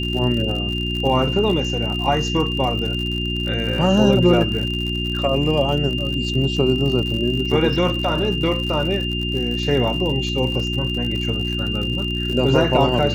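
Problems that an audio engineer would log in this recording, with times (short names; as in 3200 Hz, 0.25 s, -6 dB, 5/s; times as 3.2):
crackle 78/s -26 dBFS
hum 60 Hz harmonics 6 -25 dBFS
tone 2800 Hz -25 dBFS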